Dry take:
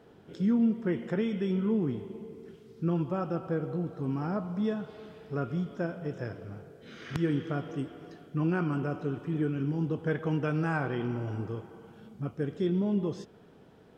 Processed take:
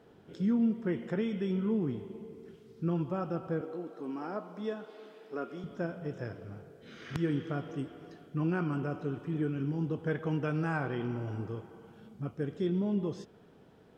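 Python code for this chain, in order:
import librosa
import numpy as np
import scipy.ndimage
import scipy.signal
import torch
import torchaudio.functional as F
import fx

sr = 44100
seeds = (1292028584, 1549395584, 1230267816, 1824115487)

y = fx.highpass(x, sr, hz=260.0, slope=24, at=(3.61, 5.64))
y = y * librosa.db_to_amplitude(-2.5)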